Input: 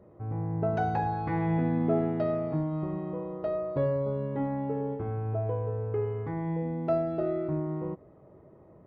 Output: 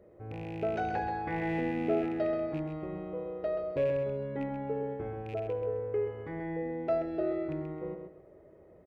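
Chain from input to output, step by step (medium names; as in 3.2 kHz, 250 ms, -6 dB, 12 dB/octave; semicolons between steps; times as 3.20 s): rattle on loud lows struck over -28 dBFS, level -39 dBFS; graphic EQ 125/250/500/1000/2000 Hz -10/-5/+4/-10/+4 dB; on a send: feedback delay 131 ms, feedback 26%, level -7 dB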